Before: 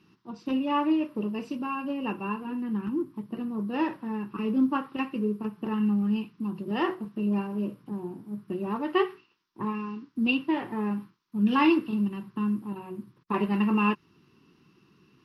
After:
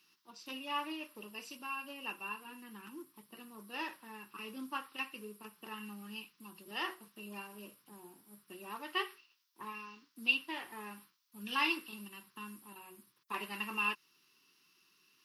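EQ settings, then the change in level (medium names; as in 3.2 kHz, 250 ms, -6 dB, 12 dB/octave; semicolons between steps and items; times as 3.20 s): differentiator; +7.0 dB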